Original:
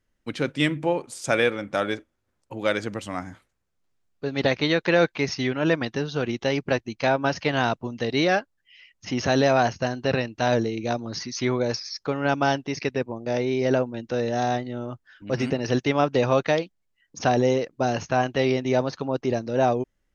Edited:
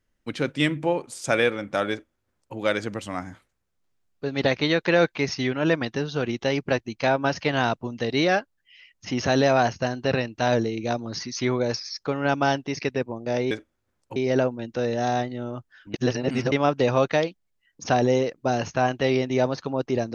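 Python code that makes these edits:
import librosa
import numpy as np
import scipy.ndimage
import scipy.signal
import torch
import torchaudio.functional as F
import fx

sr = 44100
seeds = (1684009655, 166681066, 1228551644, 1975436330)

y = fx.edit(x, sr, fx.duplicate(start_s=1.91, length_s=0.65, to_s=13.51),
    fx.reverse_span(start_s=15.29, length_s=0.58), tone=tone)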